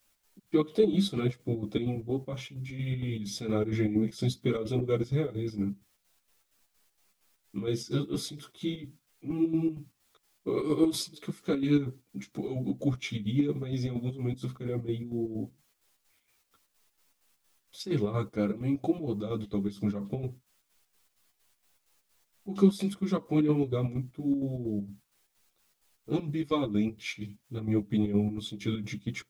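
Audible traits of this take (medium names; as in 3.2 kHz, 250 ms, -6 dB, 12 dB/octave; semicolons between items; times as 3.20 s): a quantiser's noise floor 12-bit, dither triangular; chopped level 4.3 Hz, depth 60%, duty 60%; a shimmering, thickened sound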